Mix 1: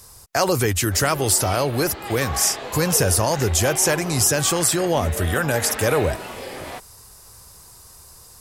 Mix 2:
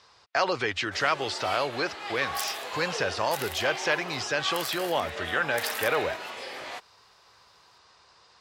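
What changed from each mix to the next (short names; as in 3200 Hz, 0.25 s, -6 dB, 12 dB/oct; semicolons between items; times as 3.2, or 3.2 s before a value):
speech: add LPF 4000 Hz 24 dB/oct; second sound: remove synth low-pass 1800 Hz, resonance Q 2.5; master: add HPF 1100 Hz 6 dB/oct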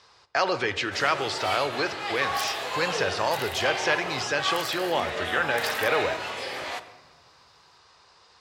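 speech: send on; first sound +5.0 dB; second sound -4.0 dB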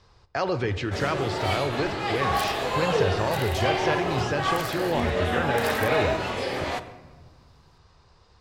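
speech -7.5 dB; master: remove HPF 1100 Hz 6 dB/oct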